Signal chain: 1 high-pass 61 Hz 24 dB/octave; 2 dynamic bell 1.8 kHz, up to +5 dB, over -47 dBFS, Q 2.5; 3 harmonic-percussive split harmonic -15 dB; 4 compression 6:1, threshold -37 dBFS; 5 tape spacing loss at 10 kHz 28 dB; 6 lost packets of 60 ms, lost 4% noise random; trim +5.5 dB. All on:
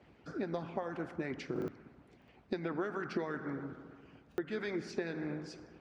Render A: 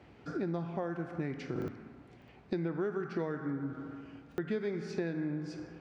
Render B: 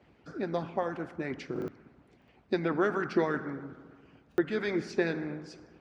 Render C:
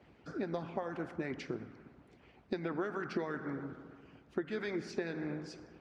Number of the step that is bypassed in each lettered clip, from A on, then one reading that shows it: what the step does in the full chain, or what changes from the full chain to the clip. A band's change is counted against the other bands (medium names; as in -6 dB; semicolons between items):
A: 3, 125 Hz band +7.0 dB; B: 4, mean gain reduction 3.5 dB; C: 6, momentary loudness spread change +3 LU